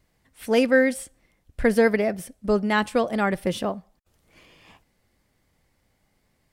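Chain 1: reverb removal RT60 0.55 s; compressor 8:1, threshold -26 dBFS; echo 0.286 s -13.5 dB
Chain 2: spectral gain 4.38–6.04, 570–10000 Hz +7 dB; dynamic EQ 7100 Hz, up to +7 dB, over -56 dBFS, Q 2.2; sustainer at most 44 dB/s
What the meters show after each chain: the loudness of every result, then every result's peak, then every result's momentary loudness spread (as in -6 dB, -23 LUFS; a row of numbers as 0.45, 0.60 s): -32.0, -21.5 LUFS; -16.0, -6.5 dBFS; 14, 15 LU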